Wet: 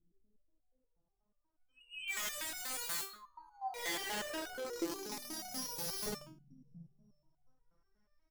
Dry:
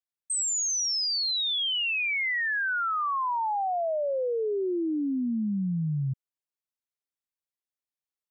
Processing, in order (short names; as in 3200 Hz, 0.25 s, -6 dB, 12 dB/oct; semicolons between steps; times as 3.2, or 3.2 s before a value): limiter -29.5 dBFS, peak gain reduction 4.5 dB; added noise brown -66 dBFS; vocal rider within 3 dB 0.5 s; feedback echo 0.198 s, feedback 60%, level -5 dB; dynamic EQ 410 Hz, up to -3 dB, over -41 dBFS, Q 4.7; careless resampling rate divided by 8×, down filtered, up zero stuff; LFO low-pass saw up 0.33 Hz 300–4600 Hz; de-hum 281.8 Hz, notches 13; speakerphone echo 0.13 s, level -13 dB; wrapped overs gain 23 dB; stepped resonator 8.3 Hz 170–730 Hz; gain +2 dB